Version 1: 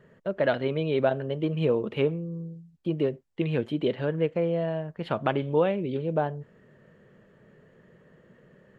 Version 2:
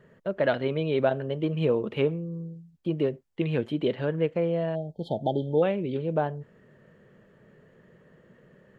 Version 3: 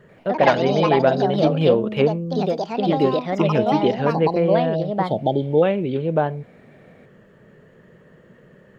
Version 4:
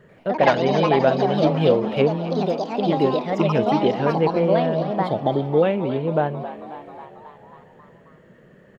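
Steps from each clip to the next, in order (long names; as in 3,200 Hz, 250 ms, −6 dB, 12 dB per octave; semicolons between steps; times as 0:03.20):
time-frequency box erased 0:04.75–0:05.63, 890–3,100 Hz
delay with pitch and tempo change per echo 88 ms, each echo +4 semitones, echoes 2; level +6.5 dB
echo with shifted repeats 270 ms, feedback 65%, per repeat +72 Hz, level −14 dB; level −1 dB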